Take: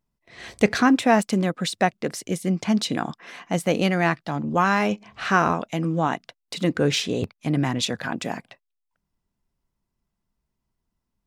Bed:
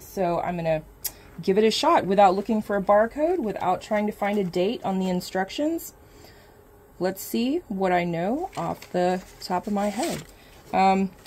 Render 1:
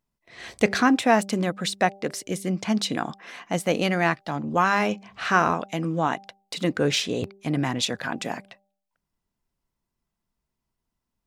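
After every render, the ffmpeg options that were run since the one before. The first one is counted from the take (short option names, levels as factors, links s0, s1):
-af "lowshelf=f=270:g=-4.5,bandreject=f=196.7:t=h:w=4,bandreject=f=393.4:t=h:w=4,bandreject=f=590.1:t=h:w=4,bandreject=f=786.8:t=h:w=4"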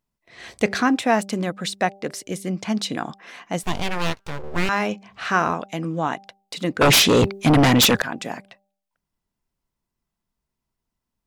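-filter_complex "[0:a]asettb=1/sr,asplit=3[s0][s1][s2];[s0]atrim=end=3.634[s3];[s1]atrim=start=3.63:end=4.69,asetpts=PTS-STARTPTS,afade=t=in:d=0.004:c=qsin,afade=t=out:st=1.056:d=0.004:c=qsin,aeval=exprs='abs(val(0))':c=same[s4];[s2]atrim=start=4.686[s5];[s3][s4]acrossfade=d=0.004:c1=hsin:c2=qsin[s6];[s6][s5]acrossfade=d=0.004:c1=qsin:c2=hsin,asettb=1/sr,asplit=3[s7][s8][s9];[s7]atrim=end=6.814[s10];[s8]atrim=start=6.81:end=8.02,asetpts=PTS-STARTPTS,afade=t=in:d=0.004:c=qsin,afade=t=out:st=1.206:d=0.004:c=qsin,aeval=exprs='0.299*sin(PI/2*3.98*val(0)/0.299)':c=same[s11];[s9]atrim=start=8.016[s12];[s10][s11]acrossfade=d=0.004:c1=hsin:c2=qsin[s13];[s13][s12]acrossfade=d=0.004:c1=qsin:c2=hsin"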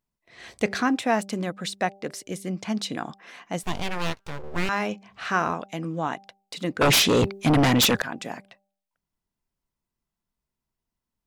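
-af "volume=0.631"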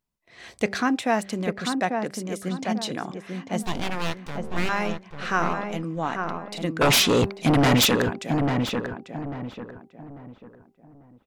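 -filter_complex "[0:a]asplit=2[s0][s1];[s1]adelay=844,lowpass=f=1500:p=1,volume=0.631,asplit=2[s2][s3];[s3]adelay=844,lowpass=f=1500:p=1,volume=0.35,asplit=2[s4][s5];[s5]adelay=844,lowpass=f=1500:p=1,volume=0.35,asplit=2[s6][s7];[s7]adelay=844,lowpass=f=1500:p=1,volume=0.35[s8];[s0][s2][s4][s6][s8]amix=inputs=5:normalize=0"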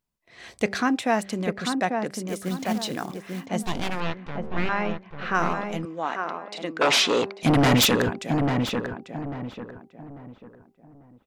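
-filter_complex "[0:a]asettb=1/sr,asplit=3[s0][s1][s2];[s0]atrim=end=2.284[s3];[s1]atrim=start=2.28:end=3.46,asetpts=PTS-STARTPTS,afade=t=in:d=0.004:c=qsin,afade=t=out:st=1.176:d=0.004:c=qsin,acrusher=bits=4:mode=log:mix=0:aa=0.000001[s4];[s2]atrim=start=3.456[s5];[s3][s4]acrossfade=d=0.004:c1=hsin:c2=qsin[s6];[s6][s5]acrossfade=d=0.004:c1=qsin:c2=hsin,asettb=1/sr,asplit=3[s7][s8][s9];[s7]atrim=end=4.004[s10];[s8]atrim=start=4:end=5.35,asetpts=PTS-STARTPTS,afade=t=in:d=0.004:c=qsin,afade=t=out:st=1.346:d=0.004:c=qsin,lowpass=3000[s11];[s9]atrim=start=5.346[s12];[s10][s11]acrossfade=d=0.004:c1=hsin:c2=qsin[s13];[s13][s12]acrossfade=d=0.004:c1=qsin:c2=hsin,asettb=1/sr,asplit=3[s14][s15][s16];[s14]atrim=end=5.854[s17];[s15]atrim=start=5.85:end=7.43,asetpts=PTS-STARTPTS,afade=t=in:d=0.004:c=qsin,afade=t=out:st=1.576:d=0.004:c=qsin,highpass=350,lowpass=6300[s18];[s16]atrim=start=7.426[s19];[s17][s18]acrossfade=d=0.004:c1=hsin:c2=qsin[s20];[s20][s19]acrossfade=d=0.004:c1=qsin:c2=hsin"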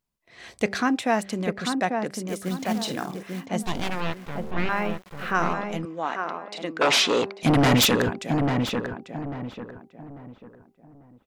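-filter_complex "[0:a]asettb=1/sr,asplit=3[s0][s1][s2];[s0]atrim=end=2.734[s3];[s1]atrim=start=2.73:end=3.23,asetpts=PTS-STARTPTS,afade=t=in:d=0.004:c=qsin,afade=t=out:st=0.496:d=0.004:c=qsin,asplit=2[s4][s5];[s5]adelay=48,volume=0.355[s6];[s4][s6]amix=inputs=2:normalize=0,atrim=end_sample=22050[s7];[s2]atrim=start=3.226[s8];[s3][s7]acrossfade=d=0.004:c1=hsin:c2=qsin[s9];[s9][s8]acrossfade=d=0.004:c1=qsin:c2=hsin,asettb=1/sr,asplit=3[s10][s11][s12];[s10]atrim=end=3.744[s13];[s11]atrim=start=3.74:end=5.33,asetpts=PTS-STARTPTS,afade=t=in:d=0.004:c=qsin,afade=t=out:st=1.586:d=0.004:c=qsin,aeval=exprs='val(0)*gte(abs(val(0)),0.00668)':c=same[s14];[s12]atrim=start=5.326[s15];[s13][s14]acrossfade=d=0.004:c1=hsin:c2=qsin[s16];[s16][s15]acrossfade=d=0.004:c1=qsin:c2=hsin"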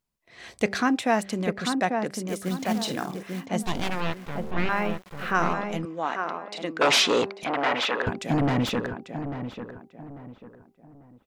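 -filter_complex "[0:a]asettb=1/sr,asplit=3[s0][s1][s2];[s0]atrim=end=7.444[s3];[s1]atrim=start=7.44:end=8.07,asetpts=PTS-STARTPTS,afade=t=in:d=0.004:c=qsin,afade=t=out:st=0.626:d=0.004:c=qsin,highpass=610,lowpass=2500[s4];[s2]atrim=start=8.066[s5];[s3][s4]acrossfade=d=0.004:c1=hsin:c2=qsin[s6];[s6][s5]acrossfade=d=0.004:c1=qsin:c2=hsin"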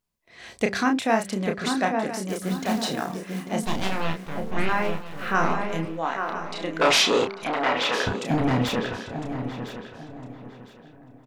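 -filter_complex "[0:a]asplit=2[s0][s1];[s1]adelay=31,volume=0.562[s2];[s0][s2]amix=inputs=2:normalize=0,aecho=1:1:1006|2012|3018:0.211|0.0507|0.0122"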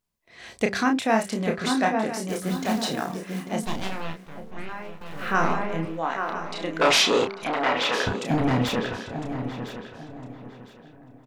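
-filter_complex "[0:a]asettb=1/sr,asplit=3[s0][s1][s2];[s0]atrim=end=1.124[s3];[s1]atrim=start=1.12:end=2.66,asetpts=PTS-STARTPTS,afade=t=in:d=0.004:c=qsin,afade=t=out:st=1.536:d=0.004:c=qsin,asplit=2[s4][s5];[s5]adelay=23,volume=0.422[s6];[s4][s6]amix=inputs=2:normalize=0,atrim=end_sample=67914[s7];[s2]atrim=start=2.656[s8];[s3][s7]acrossfade=d=0.004:c1=hsin:c2=qsin[s9];[s9][s8]acrossfade=d=0.004:c1=qsin:c2=hsin,asettb=1/sr,asplit=3[s10][s11][s12];[s10]atrim=end=5.594[s13];[s11]atrim=start=5.59:end=6.1,asetpts=PTS-STARTPTS,afade=t=in:d=0.004:c=qsin,afade=t=out:st=0.506:d=0.004:c=qsin,acrossover=split=2600[s14][s15];[s15]acompressor=threshold=0.00355:ratio=4:attack=1:release=60[s16];[s14][s16]amix=inputs=2:normalize=0[s17];[s12]atrim=start=6.096[s18];[s13][s17]acrossfade=d=0.004:c1=hsin:c2=qsin[s19];[s19][s18]acrossfade=d=0.004:c1=qsin:c2=hsin,asplit=2[s20][s21];[s20]atrim=end=5.01,asetpts=PTS-STARTPTS,afade=t=out:st=3.43:d=1.58:c=qua:silence=0.223872[s22];[s21]atrim=start=5.01,asetpts=PTS-STARTPTS,afade=t=in:d=0.004:c=hsin:silence=0.223872[s23];[s22][s23]concat=n=2:v=0:a=1"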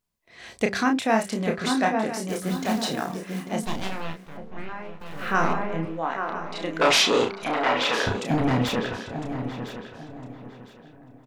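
-filter_complex "[0:a]asettb=1/sr,asplit=3[s0][s1][s2];[s0]atrim=end=4.374[s3];[s1]atrim=start=4.37:end=5,asetpts=PTS-STARTPTS,afade=t=in:d=0.004:c=qsin,afade=t=out:st=0.626:d=0.004:c=qsin,aemphasis=mode=reproduction:type=50fm[s4];[s2]atrim=start=4.996[s5];[s3][s4]acrossfade=d=0.004:c1=hsin:c2=qsin[s6];[s6][s5]acrossfade=d=0.004:c1=qsin:c2=hsin,asettb=1/sr,asplit=3[s7][s8][s9];[s7]atrim=end=5.534[s10];[s8]atrim=start=5.53:end=6.55,asetpts=PTS-STARTPTS,afade=t=in:d=0.004:c=qsin,afade=t=out:st=1.016:d=0.004:c=qsin,highshelf=f=3900:g=-8.5[s11];[s9]atrim=start=6.546[s12];[s10][s11]acrossfade=d=0.004:c1=hsin:c2=qsin[s13];[s13][s12]acrossfade=d=0.004:c1=qsin:c2=hsin,asettb=1/sr,asplit=3[s14][s15][s16];[s14]atrim=end=7.104[s17];[s15]atrim=start=7.1:end=8.2,asetpts=PTS-STARTPTS,afade=t=in:d=0.004:c=qsin,afade=t=out:st=1.096:d=0.004:c=qsin,asplit=2[s18][s19];[s19]adelay=40,volume=0.398[s20];[s18][s20]amix=inputs=2:normalize=0,atrim=end_sample=48510[s21];[s16]atrim=start=8.196[s22];[s17][s21]acrossfade=d=0.004:c1=hsin:c2=qsin[s23];[s23][s22]acrossfade=d=0.004:c1=qsin:c2=hsin"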